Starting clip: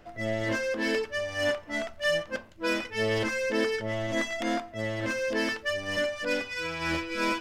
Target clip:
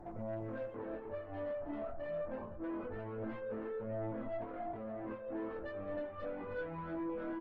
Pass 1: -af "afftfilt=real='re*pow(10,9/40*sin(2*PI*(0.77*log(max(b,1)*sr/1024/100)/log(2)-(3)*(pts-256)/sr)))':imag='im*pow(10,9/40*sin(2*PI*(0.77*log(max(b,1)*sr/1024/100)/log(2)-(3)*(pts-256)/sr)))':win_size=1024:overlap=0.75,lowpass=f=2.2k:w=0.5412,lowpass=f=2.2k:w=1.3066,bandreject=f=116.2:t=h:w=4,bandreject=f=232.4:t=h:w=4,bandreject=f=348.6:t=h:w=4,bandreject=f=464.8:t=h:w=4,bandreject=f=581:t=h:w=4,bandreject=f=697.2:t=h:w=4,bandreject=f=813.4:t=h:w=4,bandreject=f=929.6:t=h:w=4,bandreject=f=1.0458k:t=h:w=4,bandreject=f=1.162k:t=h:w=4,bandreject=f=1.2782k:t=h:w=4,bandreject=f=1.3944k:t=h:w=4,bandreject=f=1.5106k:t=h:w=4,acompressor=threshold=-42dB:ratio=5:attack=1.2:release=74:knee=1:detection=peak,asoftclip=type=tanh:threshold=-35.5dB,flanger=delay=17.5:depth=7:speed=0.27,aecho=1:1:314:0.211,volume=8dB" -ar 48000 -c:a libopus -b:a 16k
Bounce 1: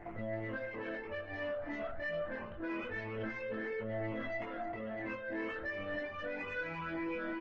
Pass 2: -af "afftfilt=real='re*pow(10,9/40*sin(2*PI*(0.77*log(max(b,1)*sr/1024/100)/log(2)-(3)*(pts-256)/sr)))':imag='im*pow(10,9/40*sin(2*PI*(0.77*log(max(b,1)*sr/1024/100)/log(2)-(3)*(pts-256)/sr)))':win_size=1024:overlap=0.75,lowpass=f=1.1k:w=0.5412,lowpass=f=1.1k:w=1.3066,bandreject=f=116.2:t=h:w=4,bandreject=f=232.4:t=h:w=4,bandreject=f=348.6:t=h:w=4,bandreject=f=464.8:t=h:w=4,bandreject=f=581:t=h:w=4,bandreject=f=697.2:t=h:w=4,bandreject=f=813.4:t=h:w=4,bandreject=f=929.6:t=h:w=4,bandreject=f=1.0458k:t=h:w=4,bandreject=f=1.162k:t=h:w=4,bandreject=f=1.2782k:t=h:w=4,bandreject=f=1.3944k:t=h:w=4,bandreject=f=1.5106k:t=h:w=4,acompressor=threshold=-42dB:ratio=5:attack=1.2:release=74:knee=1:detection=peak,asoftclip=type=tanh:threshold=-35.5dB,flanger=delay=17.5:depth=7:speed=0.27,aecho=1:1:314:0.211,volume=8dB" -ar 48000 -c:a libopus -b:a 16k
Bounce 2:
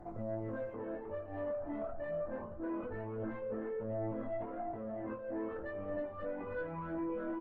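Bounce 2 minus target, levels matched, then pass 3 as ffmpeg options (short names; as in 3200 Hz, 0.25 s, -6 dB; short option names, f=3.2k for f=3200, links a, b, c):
soft clip: distortion -9 dB
-af "afftfilt=real='re*pow(10,9/40*sin(2*PI*(0.77*log(max(b,1)*sr/1024/100)/log(2)-(3)*(pts-256)/sr)))':imag='im*pow(10,9/40*sin(2*PI*(0.77*log(max(b,1)*sr/1024/100)/log(2)-(3)*(pts-256)/sr)))':win_size=1024:overlap=0.75,lowpass=f=1.1k:w=0.5412,lowpass=f=1.1k:w=1.3066,bandreject=f=116.2:t=h:w=4,bandreject=f=232.4:t=h:w=4,bandreject=f=348.6:t=h:w=4,bandreject=f=464.8:t=h:w=4,bandreject=f=581:t=h:w=4,bandreject=f=697.2:t=h:w=4,bandreject=f=813.4:t=h:w=4,bandreject=f=929.6:t=h:w=4,bandreject=f=1.0458k:t=h:w=4,bandreject=f=1.162k:t=h:w=4,bandreject=f=1.2782k:t=h:w=4,bandreject=f=1.3944k:t=h:w=4,bandreject=f=1.5106k:t=h:w=4,acompressor=threshold=-42dB:ratio=5:attack=1.2:release=74:knee=1:detection=peak,asoftclip=type=tanh:threshold=-41.5dB,flanger=delay=17.5:depth=7:speed=0.27,aecho=1:1:314:0.211,volume=8dB" -ar 48000 -c:a libopus -b:a 16k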